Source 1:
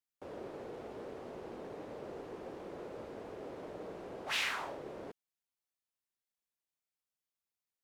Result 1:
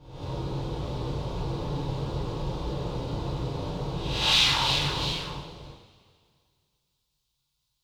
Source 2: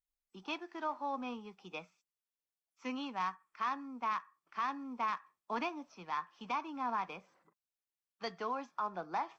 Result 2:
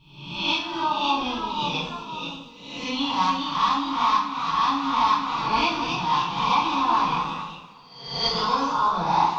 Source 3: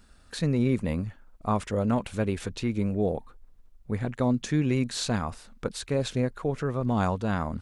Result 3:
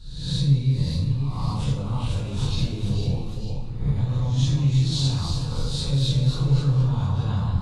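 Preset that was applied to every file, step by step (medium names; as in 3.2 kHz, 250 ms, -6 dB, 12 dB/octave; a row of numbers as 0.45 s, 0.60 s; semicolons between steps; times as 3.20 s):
reverse spectral sustain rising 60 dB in 0.74 s; peak limiter -23 dBFS; treble shelf 6.1 kHz +9.5 dB; ever faster or slower copies 586 ms, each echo +1 st, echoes 2, each echo -6 dB; FFT filter 130 Hz 0 dB, 250 Hz -16 dB, 650 Hz -23 dB, 960 Hz -15 dB, 1.8 kHz -27 dB, 3.8 kHz -9 dB, 8 kHz -24 dB, 12 kHz -28 dB; two-slope reverb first 0.5 s, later 2.2 s, from -17 dB, DRR -6 dB; peak normalisation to -9 dBFS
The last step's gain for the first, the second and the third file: +19.0 dB, +22.5 dB, +8.5 dB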